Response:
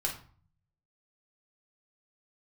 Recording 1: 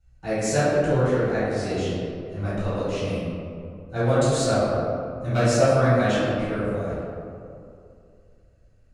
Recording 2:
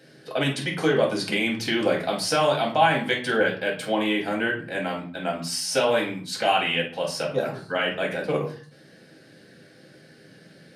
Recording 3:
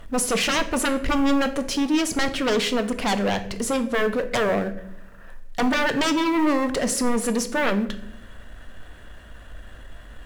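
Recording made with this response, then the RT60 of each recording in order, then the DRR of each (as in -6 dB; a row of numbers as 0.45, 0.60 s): 2; 2.6 s, 0.45 s, not exponential; -14.0, -2.0, 8.5 dB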